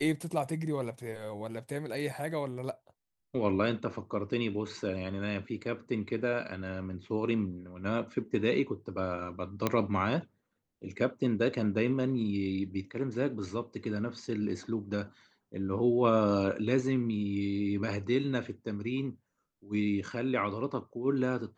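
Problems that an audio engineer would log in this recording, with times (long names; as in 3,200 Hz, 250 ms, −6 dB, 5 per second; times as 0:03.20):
0:09.67: click −13 dBFS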